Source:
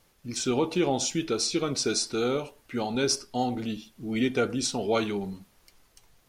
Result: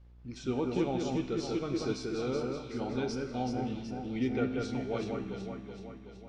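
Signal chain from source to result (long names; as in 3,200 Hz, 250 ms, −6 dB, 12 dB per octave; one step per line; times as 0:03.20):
fade-out on the ending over 1.89 s
low-pass filter 4,300 Hz 12 dB per octave
tuned comb filter 64 Hz, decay 1.8 s, harmonics all, mix 70%
on a send: delay that swaps between a low-pass and a high-pass 188 ms, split 2,300 Hz, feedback 75%, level −3 dB
on the sum: hum with harmonics 60 Hz, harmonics 32, −61 dBFS −9 dB per octave
spectral tilt −1.5 dB per octave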